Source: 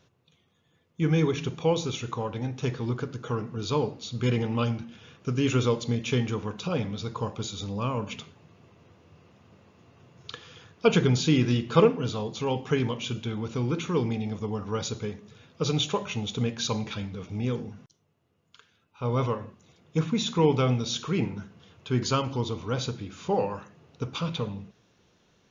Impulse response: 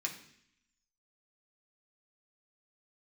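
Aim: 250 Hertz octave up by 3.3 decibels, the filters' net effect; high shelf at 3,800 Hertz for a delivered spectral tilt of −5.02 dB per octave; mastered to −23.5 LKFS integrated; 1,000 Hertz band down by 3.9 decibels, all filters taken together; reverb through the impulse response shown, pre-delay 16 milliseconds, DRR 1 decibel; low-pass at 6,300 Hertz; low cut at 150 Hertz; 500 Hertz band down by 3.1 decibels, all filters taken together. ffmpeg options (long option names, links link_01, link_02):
-filter_complex "[0:a]highpass=150,lowpass=6300,equalizer=frequency=250:width_type=o:gain=6.5,equalizer=frequency=500:width_type=o:gain=-5,equalizer=frequency=1000:width_type=o:gain=-4.5,highshelf=frequency=3800:gain=7.5,asplit=2[link_01][link_02];[1:a]atrim=start_sample=2205,adelay=16[link_03];[link_02][link_03]afir=irnorm=-1:irlink=0,volume=-2.5dB[link_04];[link_01][link_04]amix=inputs=2:normalize=0,volume=2.5dB"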